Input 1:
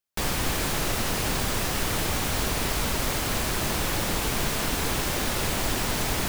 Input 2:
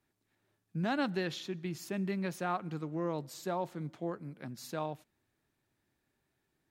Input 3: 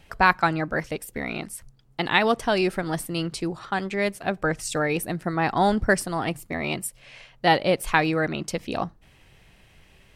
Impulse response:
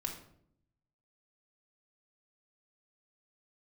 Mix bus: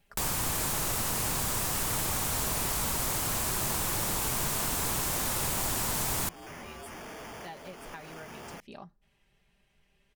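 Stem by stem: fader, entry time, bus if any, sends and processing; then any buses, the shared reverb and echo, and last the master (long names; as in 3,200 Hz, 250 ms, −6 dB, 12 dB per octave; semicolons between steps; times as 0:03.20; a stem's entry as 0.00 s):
−3.0 dB, 0.00 s, no bus, no send, graphic EQ with 10 bands 125 Hz +5 dB, 1,000 Hz +6 dB, 8,000 Hz +6 dB, 16,000 Hz +11 dB
+2.5 dB, 1.90 s, bus A, no send, sign of each sample alone; ring modulation 550 Hz; decimation without filtering 11×
−16.5 dB, 0.00 s, bus A, no send, comb filter 5 ms, depth 59%
bus A: 0.0 dB, downward compressor 4 to 1, threshold −42 dBFS, peak gain reduction 12.5 dB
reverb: not used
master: downward compressor 1.5 to 1, threshold −38 dBFS, peak gain reduction 6.5 dB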